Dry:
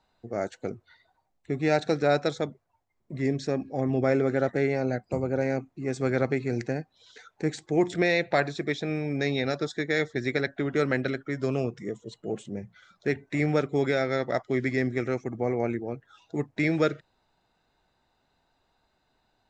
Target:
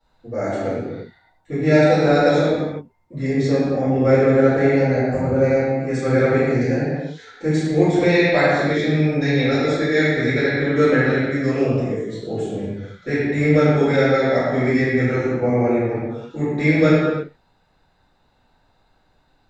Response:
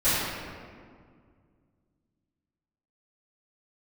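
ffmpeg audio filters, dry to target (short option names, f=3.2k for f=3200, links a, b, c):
-filter_complex "[1:a]atrim=start_sample=2205,afade=t=out:st=0.38:d=0.01,atrim=end_sample=17199,asetrate=40131,aresample=44100[a];[0:a][a]afir=irnorm=-1:irlink=0,volume=-7.5dB"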